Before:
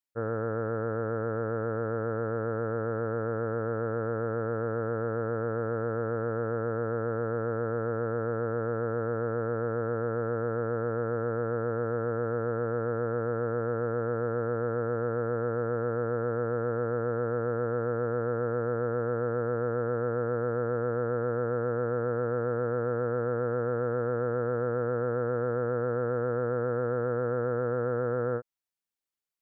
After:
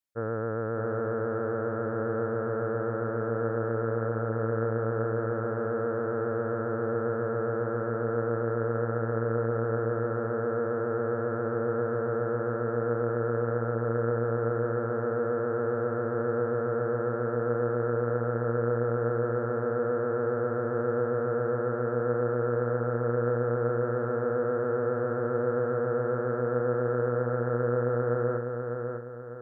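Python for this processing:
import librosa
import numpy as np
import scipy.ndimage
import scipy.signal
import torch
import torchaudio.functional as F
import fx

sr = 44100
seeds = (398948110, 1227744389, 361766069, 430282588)

y = fx.echo_feedback(x, sr, ms=600, feedback_pct=41, wet_db=-5.0)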